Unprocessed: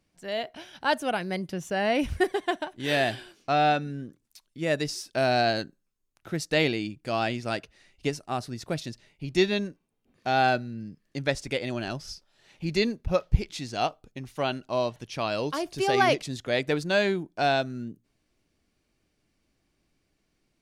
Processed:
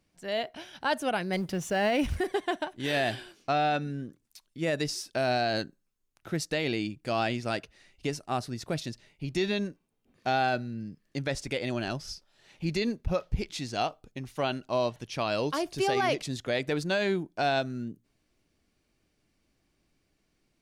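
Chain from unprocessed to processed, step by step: 1.33–2.24 G.711 law mismatch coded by mu; limiter -18 dBFS, peak gain reduction 10.5 dB

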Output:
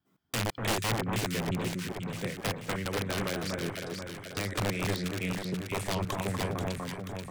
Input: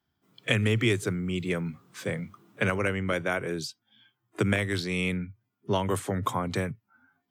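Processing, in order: slices in reverse order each 0.168 s, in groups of 2; dynamic EQ 1000 Hz, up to -4 dB, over -44 dBFS, Q 1; wrapped overs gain 19 dB; on a send: echo with dull and thin repeats by turns 0.242 s, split 1500 Hz, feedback 75%, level -2 dB; on the sum: Doppler distortion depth 0.27 ms; gain -4.5 dB

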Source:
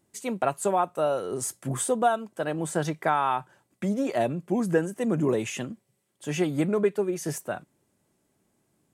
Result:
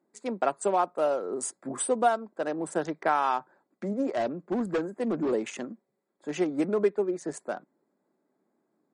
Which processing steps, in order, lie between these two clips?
Wiener smoothing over 15 samples; HPF 220 Hz 24 dB/oct; 4.07–5.32 hard clip -23 dBFS, distortion -16 dB; MP3 40 kbps 44100 Hz

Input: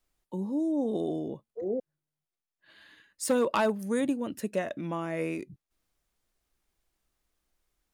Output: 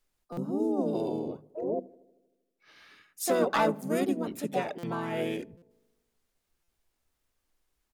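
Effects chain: notches 50/100/150/200/250/300 Hz; harmoniser -5 st -6 dB, +5 st -3 dB; on a send: darkening echo 78 ms, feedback 68%, low-pass 1500 Hz, level -23.5 dB; on the sum: stuck buffer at 0.32/4.78/5.57/6.63, samples 256, times 8; gain -2 dB

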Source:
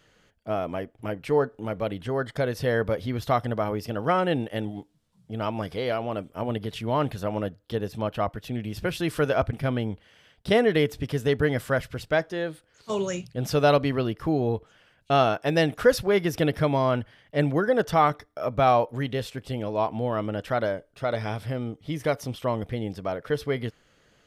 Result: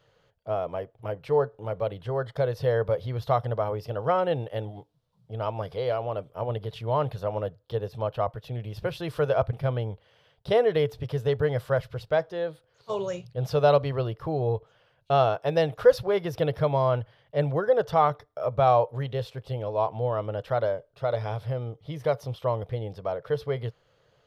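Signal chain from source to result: ten-band EQ 125 Hz +11 dB, 250 Hz -11 dB, 500 Hz +10 dB, 1000 Hz +6 dB, 2000 Hz -3 dB, 4000 Hz +5 dB, 8000 Hz -7 dB; gain -7.5 dB

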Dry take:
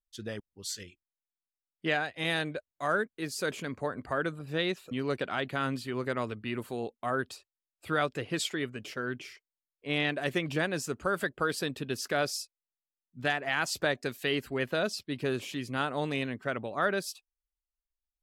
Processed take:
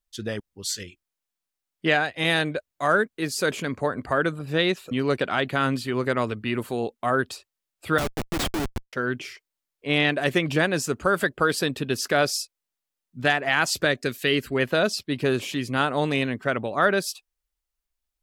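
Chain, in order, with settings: 7.98–8.93 Schmitt trigger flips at -31 dBFS; 13.76–14.55 bell 830 Hz -9 dB 0.64 oct; gain +8 dB

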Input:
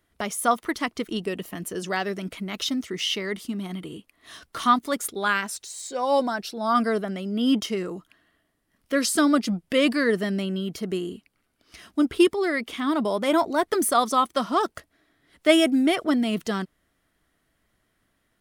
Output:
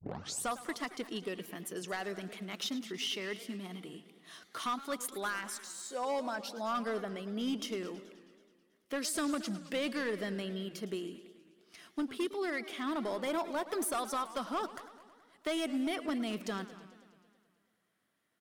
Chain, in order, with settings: tape start at the beginning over 0.47 s; HPF 120 Hz; low shelf 180 Hz -7.5 dB; compressor 2.5:1, threshold -23 dBFS, peak gain reduction 7.5 dB; hard clip -21.5 dBFS, distortion -15 dB; echo 0.229 s -19 dB; warbling echo 0.108 s, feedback 69%, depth 219 cents, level -16 dB; gain -8 dB

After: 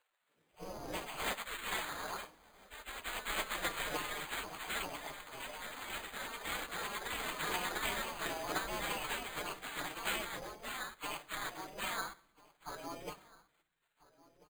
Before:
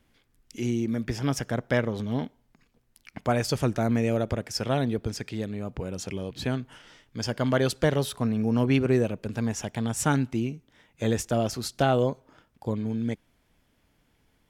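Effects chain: inharmonic rescaling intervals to 123%; spectral gate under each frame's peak -25 dB weak; outdoor echo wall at 230 m, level -19 dB; echoes that change speed 0.133 s, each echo +2 st, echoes 3; on a send at -17.5 dB: reverb RT60 0.85 s, pre-delay 7 ms; on the sum: careless resampling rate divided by 8×, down filtered, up hold; gain +9 dB

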